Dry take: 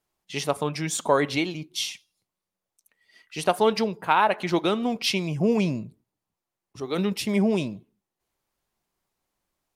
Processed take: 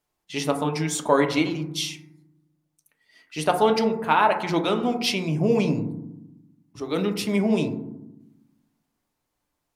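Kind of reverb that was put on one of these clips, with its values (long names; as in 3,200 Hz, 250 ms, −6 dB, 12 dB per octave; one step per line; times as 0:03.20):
feedback delay network reverb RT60 0.88 s, low-frequency decay 1.6×, high-frequency decay 0.25×, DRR 4.5 dB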